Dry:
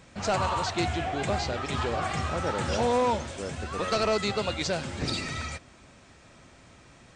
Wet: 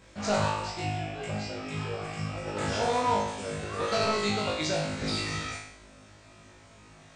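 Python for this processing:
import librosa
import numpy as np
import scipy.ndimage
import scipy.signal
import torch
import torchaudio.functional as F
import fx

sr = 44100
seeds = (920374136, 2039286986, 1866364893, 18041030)

y = fx.comb_fb(x, sr, f0_hz=53.0, decay_s=0.23, harmonics='all', damping=0.0, mix_pct=100, at=(0.5, 2.57))
y = fx.room_flutter(y, sr, wall_m=3.3, rt60_s=0.72)
y = y * librosa.db_to_amplitude(-4.5)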